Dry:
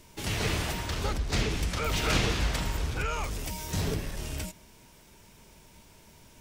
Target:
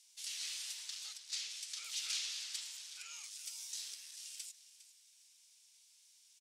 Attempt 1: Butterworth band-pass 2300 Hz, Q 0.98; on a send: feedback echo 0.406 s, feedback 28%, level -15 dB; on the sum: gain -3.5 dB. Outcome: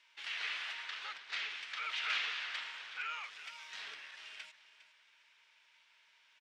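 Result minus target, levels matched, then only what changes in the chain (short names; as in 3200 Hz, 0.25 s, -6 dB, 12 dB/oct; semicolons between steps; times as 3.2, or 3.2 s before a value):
8000 Hz band -18.5 dB
change: Butterworth band-pass 6600 Hz, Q 0.98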